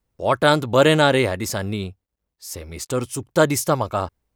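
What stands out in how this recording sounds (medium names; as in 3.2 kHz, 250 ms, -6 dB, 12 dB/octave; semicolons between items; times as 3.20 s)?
noise floor -81 dBFS; spectral tilt -4.5 dB/octave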